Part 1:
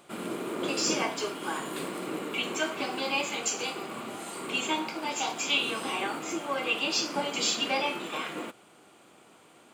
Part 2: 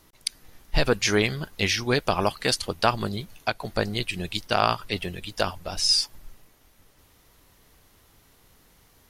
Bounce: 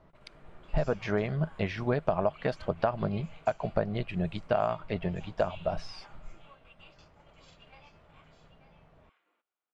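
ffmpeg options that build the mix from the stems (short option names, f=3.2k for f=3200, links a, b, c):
-filter_complex "[0:a]aderivative,volume=-5dB,asplit=2[a][b];[b]volume=-14dB[c];[1:a]equalizer=f=160:t=o:w=0.33:g=10,equalizer=f=315:t=o:w=0.33:g=-4,equalizer=f=630:t=o:w=0.33:g=11,acompressor=threshold=-22dB:ratio=6,volume=-1dB,asplit=2[d][e];[e]apad=whole_len=429347[f];[a][f]sidechaingate=range=-33dB:threshold=-56dB:ratio=16:detection=peak[g];[c]aecho=0:1:904:1[h];[g][d][h]amix=inputs=3:normalize=0,lowpass=1.5k"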